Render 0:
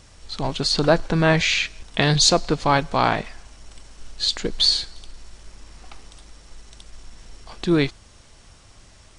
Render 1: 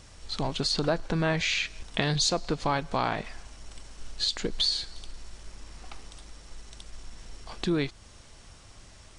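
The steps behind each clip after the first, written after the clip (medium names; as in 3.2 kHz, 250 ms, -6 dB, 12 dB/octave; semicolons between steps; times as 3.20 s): compression 2.5:1, threshold -25 dBFS, peak gain reduction 9.5 dB; trim -1.5 dB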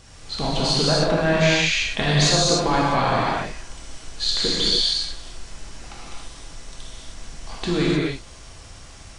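gated-style reverb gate 330 ms flat, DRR -6.5 dB; trim +1.5 dB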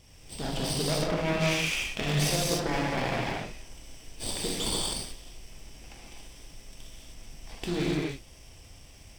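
comb filter that takes the minimum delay 0.36 ms; trim -7.5 dB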